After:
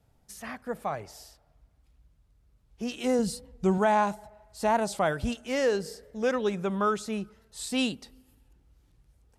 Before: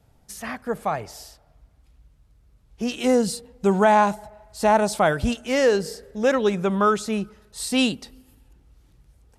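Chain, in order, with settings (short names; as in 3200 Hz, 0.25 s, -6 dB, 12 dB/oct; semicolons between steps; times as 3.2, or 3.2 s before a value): 3.19–3.78 low shelf 130 Hz +11 dB; record warp 45 rpm, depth 100 cents; gain -7 dB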